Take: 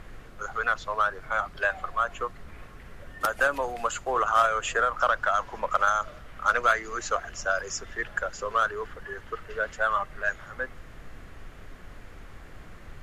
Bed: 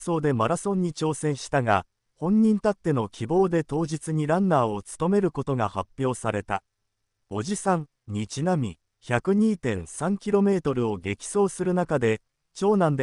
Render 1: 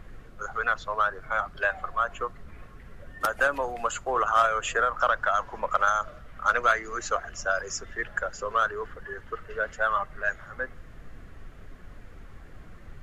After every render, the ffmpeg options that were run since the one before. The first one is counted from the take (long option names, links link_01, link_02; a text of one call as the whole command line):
ffmpeg -i in.wav -af "afftdn=noise_reduction=6:noise_floor=-47" out.wav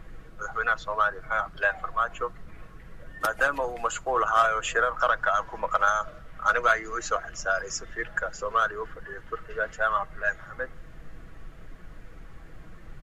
ffmpeg -i in.wav -af "aecho=1:1:6.2:0.35" out.wav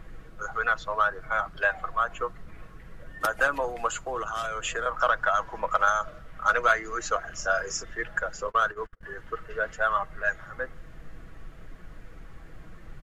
ffmpeg -i in.wav -filter_complex "[0:a]asettb=1/sr,asplit=3[link_01][link_02][link_03];[link_01]atrim=end=3.934[link_04];[link_02]atrim=start=3.93:end=4.86,asetpts=PTS-STARTPTS,afade=type=in:duration=0.004:curve=qsin,afade=type=out:start_time=0.926:duration=0.004:curve=qsin,acrossover=split=350|3000[link_05][link_06][link_07];[link_06]acompressor=threshold=-31dB:ratio=4:attack=3.2:release=140:knee=2.83:detection=peak[link_08];[link_05][link_08][link_07]amix=inputs=3:normalize=0[link_09];[link_03]atrim=start=4.856[link_10];[link_04][link_09]acrossfade=duration=0.004:curve1=hsin:curve2=qsin[link_11];[link_11][link_10]acrossfade=duration=0.004:curve1=qsin:curve2=hsin,asettb=1/sr,asplit=3[link_12][link_13][link_14];[link_12]atrim=end=7.264[link_15];[link_13]atrim=start=7.26:end=7.84,asetpts=PTS-STARTPTS,afade=type=in:duration=0.004:curve=qsin,afade=type=out:start_time=0.576:duration=0.004:curve=qsin,asplit=2[link_16][link_17];[link_17]adelay=33,volume=-7dB[link_18];[link_16][link_18]amix=inputs=2:normalize=0,atrim=end_sample=25578[link_19];[link_14]atrim=start=7.836[link_20];[link_15][link_19]acrossfade=duration=0.004:curve1=hsin:curve2=qsin[link_21];[link_21][link_20]acrossfade=duration=0.004:curve1=qsin:curve2=hsin,asettb=1/sr,asplit=3[link_22][link_23][link_24];[link_22]atrim=end=8.474[link_25];[link_23]atrim=start=8.47:end=9.03,asetpts=PTS-STARTPTS,afade=type=in:duration=0.004:curve=qsin,afade=type=out:start_time=0.556:duration=0.004:curve=qsin,agate=range=-36dB:threshold=-36dB:ratio=16:release=100:detection=peak[link_26];[link_24]atrim=start=9.026[link_27];[link_25][link_26]acrossfade=duration=0.004:curve1=hsin:curve2=qsin[link_28];[link_28][link_27]acrossfade=duration=0.004:curve1=qsin:curve2=hsin" out.wav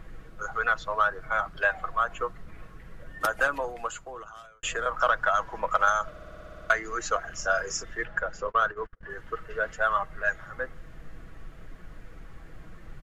ffmpeg -i in.wav -filter_complex "[0:a]asettb=1/sr,asplit=3[link_01][link_02][link_03];[link_01]atrim=end=8.054[link_04];[link_02]atrim=start=8.05:end=9.1,asetpts=PTS-STARTPTS,afade=type=in:duration=0.004:curve=qsin,afade=type=out:start_time=1.046:duration=0.004:curve=qsin,aemphasis=mode=reproduction:type=50fm[link_05];[link_03]atrim=start=9.096[link_06];[link_04][link_05]acrossfade=duration=0.004:curve1=hsin:curve2=qsin[link_07];[link_07][link_06]acrossfade=duration=0.004:curve1=qsin:curve2=hsin,asplit=12[link_08][link_09][link_10][link_11][link_12][link_13][link_14][link_15][link_16][link_17][link_18][link_19];[link_08]atrim=end=4.63,asetpts=PTS-STARTPTS,afade=type=out:start_time=3.29:duration=1.34[link_20];[link_09]atrim=start=4.63:end=6.162,asetpts=PTS-STARTPTS,afade=type=in:duration=0.004:curve=hsin[link_21];[link_10]atrim=start=6.098:end=6.162[link_22];[link_11]atrim=start=6.098:end=6.162[link_23];[link_12]atrim=start=6.098:end=6.162[link_24];[link_13]atrim=start=6.098:end=6.162[link_25];[link_14]atrim=start=6.098:end=6.162[link_26];[link_15]atrim=start=6.098:end=6.162[link_27];[link_16]atrim=start=6.098:end=6.162[link_28];[link_17]atrim=start=6.098:end=6.162[link_29];[link_18]atrim=start=6.098:end=6.162[link_30];[link_19]atrim=start=6.698[link_31];[link_20][link_21]concat=n=2:v=0:a=1[link_32];[link_32][link_22]acrossfade=duration=0.004:curve1=hsin:curve2=hsin[link_33];[link_33][link_23]acrossfade=duration=0.004:curve1=hsin:curve2=hsin[link_34];[link_34][link_24]acrossfade=duration=0.004:curve1=hsin:curve2=hsin[link_35];[link_35][link_25]acrossfade=duration=0.004:curve1=hsin:curve2=hsin[link_36];[link_36][link_26]acrossfade=duration=0.004:curve1=hsin:curve2=hsin[link_37];[link_37][link_27]acrossfade=duration=0.004:curve1=hsin:curve2=hsin[link_38];[link_38][link_28]acrossfade=duration=0.004:curve1=hsin:curve2=hsin[link_39];[link_39][link_29]acrossfade=duration=0.004:curve1=hsin:curve2=hsin[link_40];[link_40][link_30]acrossfade=duration=0.004:curve1=hsin:curve2=hsin[link_41];[link_41][link_31]acrossfade=duration=0.004:curve1=hsin:curve2=hsin" out.wav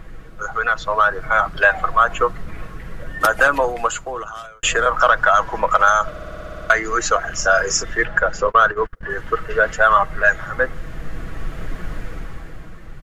ffmpeg -i in.wav -filter_complex "[0:a]asplit=2[link_01][link_02];[link_02]alimiter=limit=-19.5dB:level=0:latency=1,volume=2dB[link_03];[link_01][link_03]amix=inputs=2:normalize=0,dynaudnorm=framelen=110:gausssize=17:maxgain=11.5dB" out.wav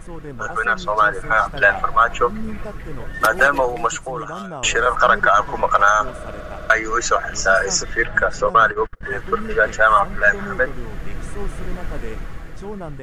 ffmpeg -i in.wav -i bed.wav -filter_complex "[1:a]volume=-11dB[link_01];[0:a][link_01]amix=inputs=2:normalize=0" out.wav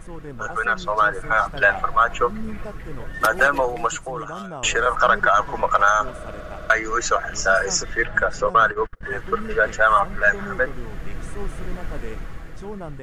ffmpeg -i in.wav -af "volume=-2.5dB" out.wav